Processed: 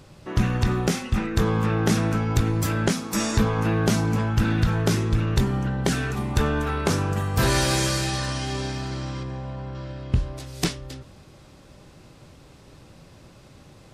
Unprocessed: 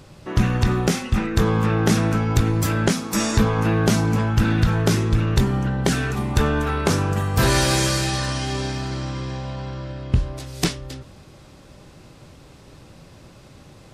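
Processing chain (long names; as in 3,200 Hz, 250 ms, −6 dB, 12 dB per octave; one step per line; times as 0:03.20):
0:09.23–0:09.75: parametric band 5,000 Hz −9.5 dB 2.2 octaves
level −3 dB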